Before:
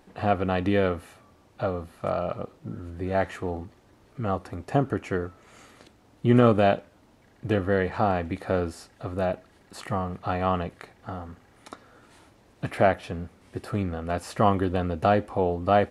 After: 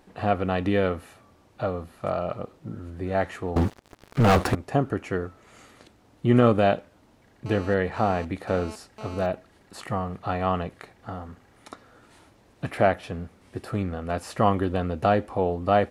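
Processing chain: 3.56–4.55 sample leveller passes 5; 7.46–9.26 GSM buzz -41 dBFS

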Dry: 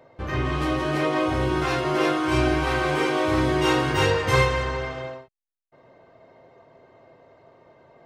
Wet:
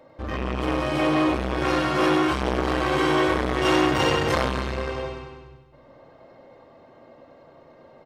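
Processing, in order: feedback echo 97 ms, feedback 59%, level -5.5 dB; shoebox room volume 3800 m³, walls furnished, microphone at 2.3 m; core saturation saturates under 960 Hz

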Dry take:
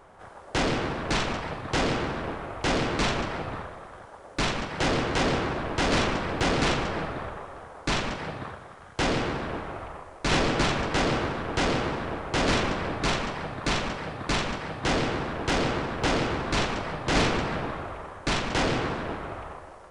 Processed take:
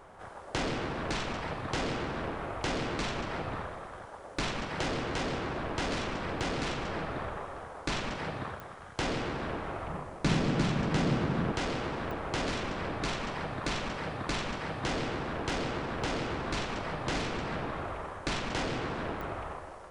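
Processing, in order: compressor, threshold -31 dBFS, peak gain reduction 11.5 dB; 9.87–11.52 bell 170 Hz +12.5 dB 1.4 oct; pops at 8.6/12.11/19.21, -28 dBFS

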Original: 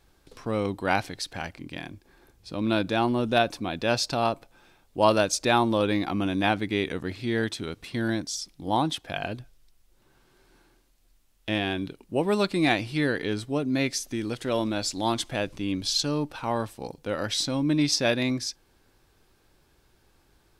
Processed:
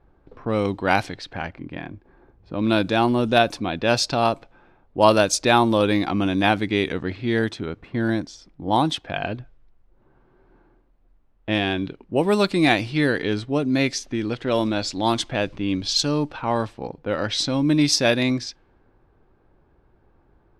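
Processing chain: 7.39–8.71 bell 3700 Hz -5 dB 1.7 oct; low-pass opened by the level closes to 1100 Hz, open at -20 dBFS; gain +5 dB

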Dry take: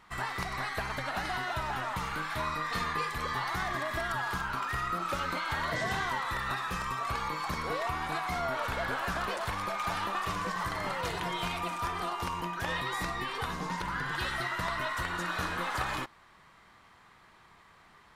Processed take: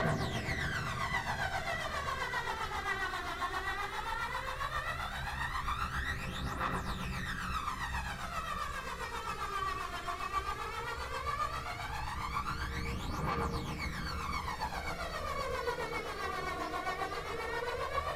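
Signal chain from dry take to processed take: Paulstretch 8.7×, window 1.00 s, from 5.83; phaser 0.15 Hz, delay 2.9 ms, feedback 67%; rotary speaker horn 7.5 Hz; gain -3.5 dB

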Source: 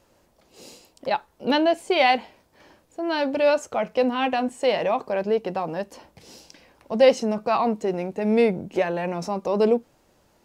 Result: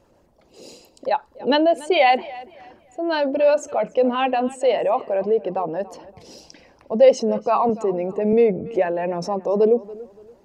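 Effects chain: formant sharpening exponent 1.5; tape echo 0.285 s, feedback 32%, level -18.5 dB, low-pass 4600 Hz; 7.69–8.33 three-band squash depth 40%; gain +3 dB

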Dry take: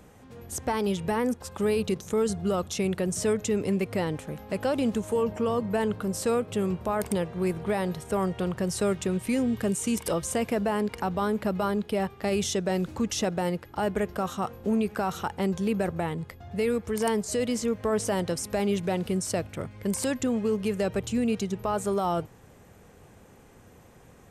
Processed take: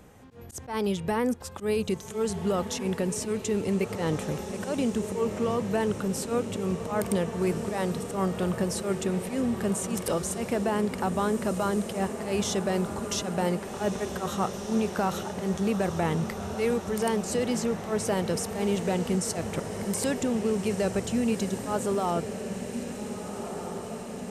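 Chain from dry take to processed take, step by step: vocal rider 0.5 s; auto swell 0.103 s; diffused feedback echo 1.605 s, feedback 69%, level -9 dB

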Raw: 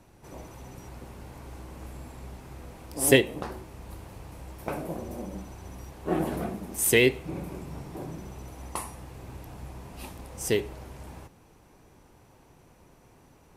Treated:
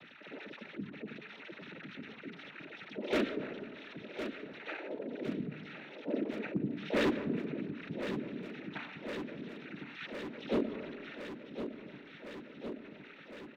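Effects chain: sine-wave speech; vocal tract filter i; bell 720 Hz -12 dB 1.3 oct; notches 50/100/150/200/250/300/350 Hz; harmoniser -7 st -1 dB, +5 st -14 dB; noise vocoder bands 12; hard clip -38 dBFS, distortion -5 dB; feedback echo 1.06 s, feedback 60%, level -17 dB; on a send at -22 dB: reverb RT60 1.2 s, pre-delay 98 ms; on the sum: fast leveller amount 50%; gain +11.5 dB

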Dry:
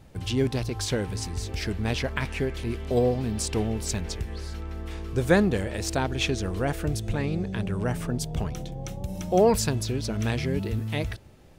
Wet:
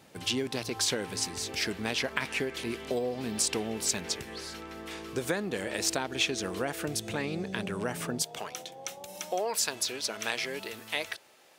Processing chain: HPF 220 Hz 12 dB/oct, from 8.22 s 570 Hz; compressor 12:1, threshold -27 dBFS, peak gain reduction 13 dB; tilt shelf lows -3 dB, about 1200 Hz; gain +2 dB

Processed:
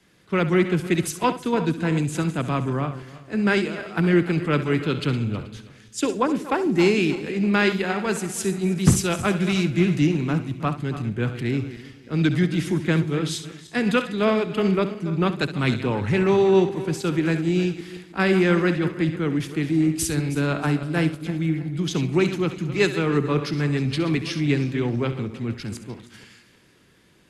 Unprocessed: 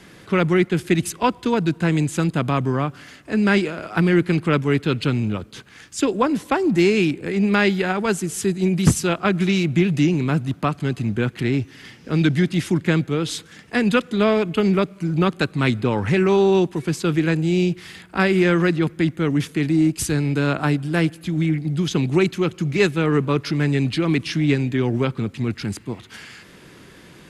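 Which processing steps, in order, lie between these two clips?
regenerating reverse delay 0.159 s, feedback 60%, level -11.5 dB; flutter echo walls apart 11.6 m, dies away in 0.31 s; three-band expander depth 40%; gain -3 dB

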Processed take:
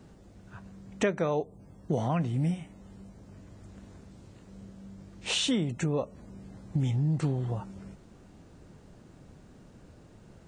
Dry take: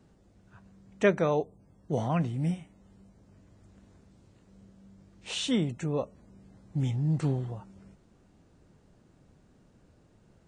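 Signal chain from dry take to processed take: compressor 4:1, threshold -34 dBFS, peak gain reduction 14 dB; gain +8 dB

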